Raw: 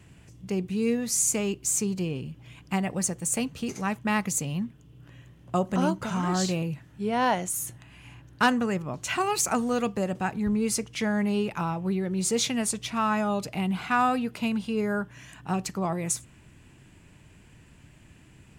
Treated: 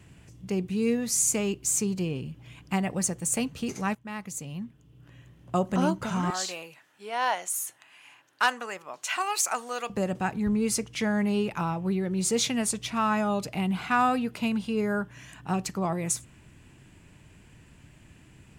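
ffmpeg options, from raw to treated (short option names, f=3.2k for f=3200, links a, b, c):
-filter_complex "[0:a]asettb=1/sr,asplit=3[a][b][c];[a]atrim=end=6.304[d];[b]atrim=start=6.3:end=9.9,asetpts=PTS-STARTPTS,afade=t=in:d=0.004:c=qsin,afade=t=out:st=3.596:d=0.004:c=qsin,highpass=730[e];[c]atrim=start=9.896[f];[d][e]acrossfade=d=0.004:c1=hsin:c2=qsin[g];[g][f]acrossfade=d=0.004:c1=qsin:c2=hsin,asplit=2[h][i];[h]atrim=end=3.95,asetpts=PTS-STARTPTS,afade=t=out:st=3.946:d=0.004:c=hsin:silence=0.177828[j];[i]atrim=start=3.95,asetpts=PTS-STARTPTS,afade=t=in:d=1.68:silence=0.177828[k];[j][k]concat=n=2:v=0:a=1"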